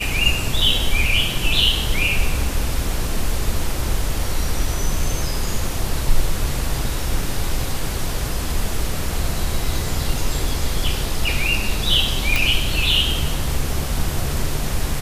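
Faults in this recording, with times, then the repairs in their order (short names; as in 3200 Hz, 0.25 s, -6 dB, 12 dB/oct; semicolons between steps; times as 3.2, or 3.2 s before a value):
12.36 pop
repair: de-click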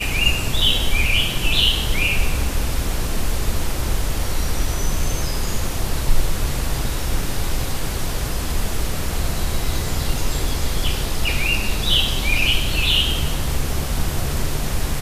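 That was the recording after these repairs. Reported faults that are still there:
none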